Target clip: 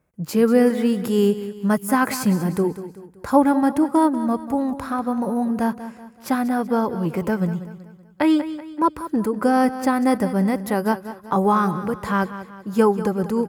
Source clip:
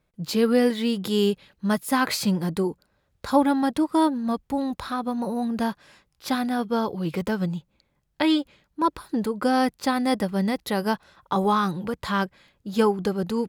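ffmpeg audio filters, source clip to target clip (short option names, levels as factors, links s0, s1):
-af "highpass=55,equalizer=f=3800:w=1.5:g=-14.5,aecho=1:1:190|380|570|760:0.224|0.0963|0.0414|0.0178,volume=1.58"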